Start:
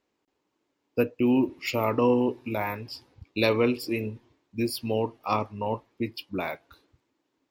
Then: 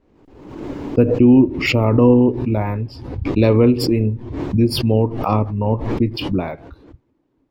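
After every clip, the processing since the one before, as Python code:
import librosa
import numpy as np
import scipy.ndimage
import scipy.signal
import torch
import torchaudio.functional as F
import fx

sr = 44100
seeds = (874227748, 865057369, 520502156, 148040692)

y = fx.tilt_eq(x, sr, slope=-4.5)
y = fx.pre_swell(y, sr, db_per_s=52.0)
y = y * 10.0 ** (3.0 / 20.0)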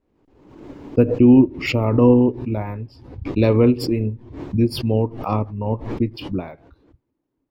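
y = fx.upward_expand(x, sr, threshold_db=-29.0, expansion=1.5)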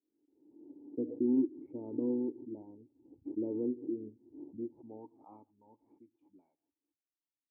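y = fx.formant_cascade(x, sr, vowel='u')
y = fx.filter_sweep_bandpass(y, sr, from_hz=420.0, to_hz=3500.0, start_s=4.4, end_s=5.94, q=1.5)
y = y * 10.0 ** (-7.5 / 20.0)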